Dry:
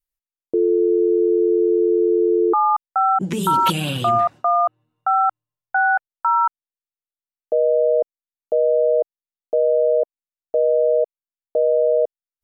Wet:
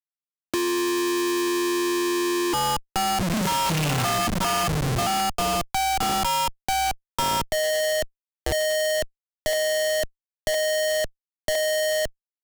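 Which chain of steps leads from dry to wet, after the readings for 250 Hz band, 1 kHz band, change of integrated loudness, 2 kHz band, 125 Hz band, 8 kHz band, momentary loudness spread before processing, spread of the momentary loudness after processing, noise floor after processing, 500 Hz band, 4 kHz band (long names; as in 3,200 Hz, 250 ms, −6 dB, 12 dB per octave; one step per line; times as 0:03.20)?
−4.0 dB, −5.0 dB, −5.0 dB, −1.0 dB, +3.0 dB, +14.5 dB, 7 LU, 5 LU, below −85 dBFS, −8.0 dB, +9.0 dB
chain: phaser with its sweep stopped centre 2,300 Hz, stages 8
repeating echo 938 ms, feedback 25%, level −14 dB
comparator with hysteresis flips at −36 dBFS
parametric band 7,500 Hz +3.5 dB 1.8 octaves
multiband upward and downward compressor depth 40%
level +2.5 dB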